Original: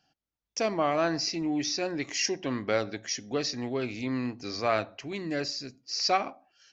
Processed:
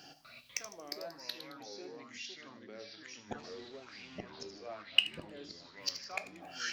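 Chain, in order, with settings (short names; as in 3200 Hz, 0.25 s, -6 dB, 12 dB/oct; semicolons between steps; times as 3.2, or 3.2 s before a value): 3.38–4.19 delta modulation 32 kbps, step -28.5 dBFS; tilt +1.5 dB/oct; in parallel at -0.5 dB: limiter -22 dBFS, peak gain reduction 10.5 dB; on the sum: flipped gate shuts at -27 dBFS, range -39 dB; soft clip -31.5 dBFS, distortion -6 dB; thin delay 77 ms, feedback 49%, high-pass 4400 Hz, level -8.5 dB; reverb, pre-delay 7 ms, DRR 9 dB; echoes that change speed 0.247 s, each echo -3 st, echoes 2; LFO bell 1.1 Hz 350–2900 Hz +13 dB; gain +9 dB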